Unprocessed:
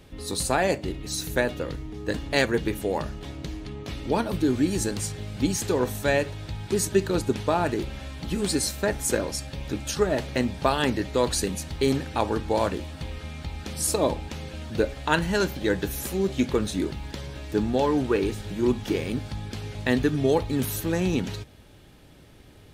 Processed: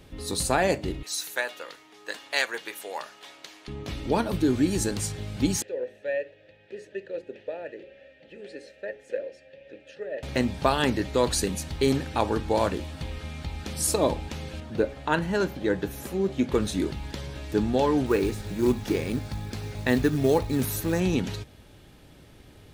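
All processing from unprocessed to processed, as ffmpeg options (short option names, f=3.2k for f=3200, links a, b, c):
-filter_complex "[0:a]asettb=1/sr,asplit=3[a][b][c];[a]atrim=end=1.034[d];[b]atrim=start=1.03:end=3.68,asetpts=PTS-STARTPTS,afade=t=in:d=0.004:c=qsin,afade=t=out:st=2.646:d=0.004:c=qsin,highpass=880,asoftclip=type=hard:threshold=-10dB[e];[c]atrim=start=3.676[f];[d][e]acrossfade=d=0.004:c1=hsin:c2=qsin[g];[g][f]acrossfade=d=0.004:c1=qsin:c2=hsin,asettb=1/sr,asplit=3[h][i][j];[h]atrim=end=5.624[k];[i]atrim=start=5.62:end=10.23,asetpts=PTS-STARTPTS,afade=t=in:d=0.004:c=qsin,afade=t=out:st=4.606:d=0.004:c=qsin,asplit=3[l][m][n];[l]bandpass=f=530:t=q:w=8,volume=0dB[o];[m]bandpass=f=1.84k:t=q:w=8,volume=-6dB[p];[n]bandpass=f=2.48k:t=q:w=8,volume=-9dB[q];[o][p][q]amix=inputs=3:normalize=0,highshelf=f=7.1k:g=-9,bandreject=f=60:t=h:w=6,bandreject=f=120:t=h:w=6,bandreject=f=180:t=h:w=6,bandreject=f=240:t=h:w=6,bandreject=f=300:t=h:w=6,bandreject=f=360:t=h:w=6,bandreject=f=420:t=h:w=6[r];[j]atrim=start=10.226[s];[k][r]acrossfade=d=0.004:c1=hsin:c2=qsin[t];[t][s]acrossfade=d=0.004:c1=qsin:c2=hsin,asettb=1/sr,asplit=3[u][v][w];[u]atrim=end=14.604[x];[v]atrim=start=14.6:end=16.52,asetpts=PTS-STARTPTS,afade=t=in:d=0.004:c=qsin,afade=t=out:st=1.916:d=0.004:c=qsin,highpass=f=120:p=1,highshelf=f=2.3k:g=-9.5[y];[w]atrim=start=16.516[z];[x][y]acrossfade=d=0.004:c1=hsin:c2=qsin[aa];[aa][z]acrossfade=d=0.004:c1=qsin:c2=hsin,asettb=1/sr,asplit=3[ab][ac][ad];[ab]atrim=end=18.064[ae];[ac]atrim=start=18.06:end=21,asetpts=PTS-STARTPTS,afade=t=in:d=0.004:c=qsin,afade=t=out:st=2.936:d=0.004:c=qsin,equalizer=f=3.1k:w=5.1:g=-6,acrusher=bits=6:mode=log:mix=0:aa=0.000001[af];[ad]atrim=start=20.996[ag];[ae][af]acrossfade=d=0.004:c1=hsin:c2=qsin[ah];[ah][ag]acrossfade=d=0.004:c1=qsin:c2=hsin"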